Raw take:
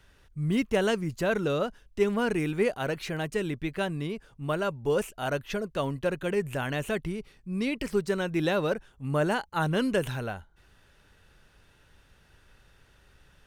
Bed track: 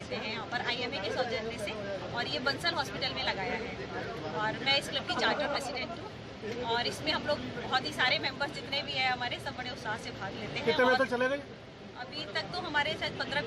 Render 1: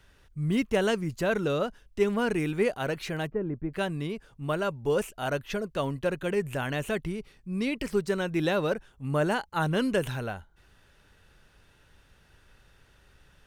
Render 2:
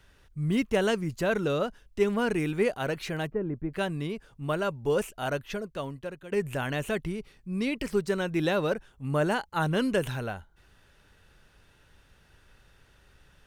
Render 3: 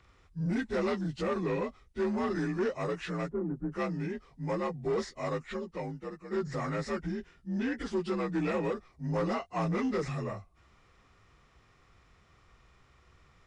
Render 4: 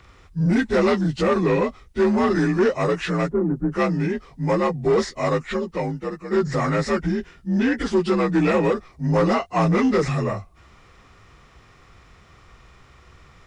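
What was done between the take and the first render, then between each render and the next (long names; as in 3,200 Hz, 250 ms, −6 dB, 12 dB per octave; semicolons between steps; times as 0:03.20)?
0:03.27–0:03.73: Bessel low-pass filter 930 Hz, order 4
0:05.22–0:06.32: fade out, to −15.5 dB
partials spread apart or drawn together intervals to 85%; soft clipping −24.5 dBFS, distortion −14 dB
level +12 dB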